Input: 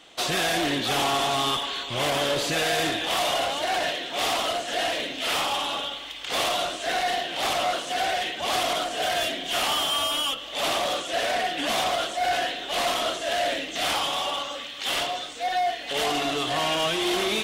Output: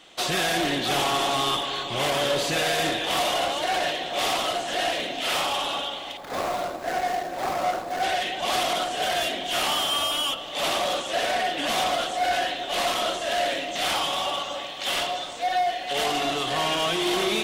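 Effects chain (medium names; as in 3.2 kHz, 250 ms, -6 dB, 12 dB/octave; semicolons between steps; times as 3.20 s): 6.17–8.03 s: median filter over 15 samples; bucket-brigade echo 306 ms, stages 2048, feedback 68%, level -10.5 dB; on a send at -15 dB: reverberation RT60 0.85 s, pre-delay 5 ms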